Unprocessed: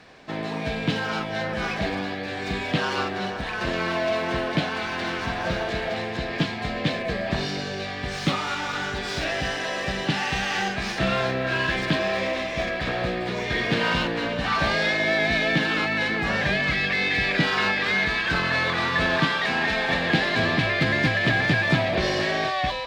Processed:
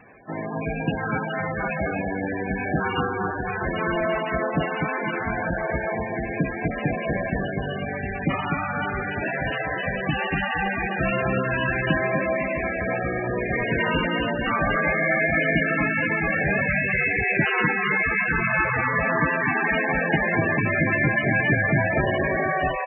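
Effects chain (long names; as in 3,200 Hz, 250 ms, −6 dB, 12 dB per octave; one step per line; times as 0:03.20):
on a send: repeating echo 249 ms, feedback 39%, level −4 dB
on the sum: MP3 8 kbit/s 24,000 Hz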